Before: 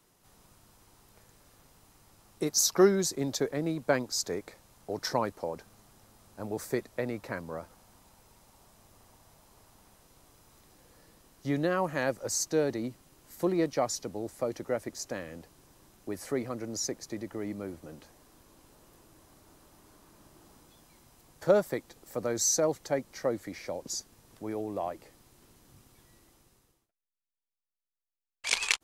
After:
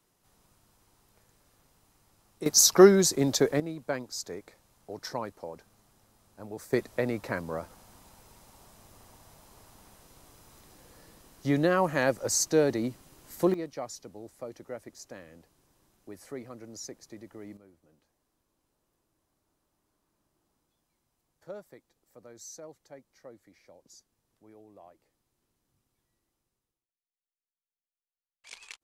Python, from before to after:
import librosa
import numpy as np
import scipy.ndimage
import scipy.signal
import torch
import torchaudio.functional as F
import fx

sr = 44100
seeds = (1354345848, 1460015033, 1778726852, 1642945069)

y = fx.gain(x, sr, db=fx.steps((0.0, -5.5), (2.46, 6.0), (3.6, -5.5), (6.73, 4.0), (13.54, -8.5), (17.57, -19.0)))